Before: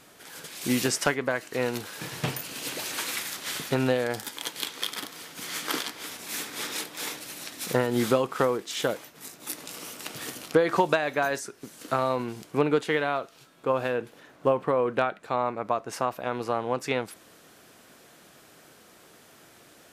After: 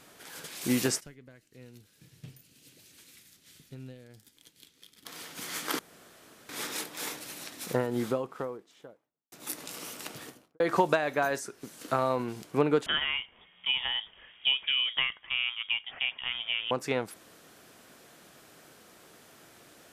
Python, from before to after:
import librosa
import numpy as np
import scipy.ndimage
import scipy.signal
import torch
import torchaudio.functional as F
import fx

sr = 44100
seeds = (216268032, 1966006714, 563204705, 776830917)

y = fx.tone_stack(x, sr, knobs='10-0-1', at=(0.99, 5.05), fade=0.02)
y = fx.studio_fade_out(y, sr, start_s=7.07, length_s=2.25)
y = fx.studio_fade_out(y, sr, start_s=9.98, length_s=0.62)
y = fx.freq_invert(y, sr, carrier_hz=3500, at=(12.86, 16.71))
y = fx.edit(y, sr, fx.room_tone_fill(start_s=5.79, length_s=0.7), tone=tone)
y = fx.dynamic_eq(y, sr, hz=3300.0, q=0.82, threshold_db=-41.0, ratio=4.0, max_db=-3)
y = y * librosa.db_to_amplitude(-1.5)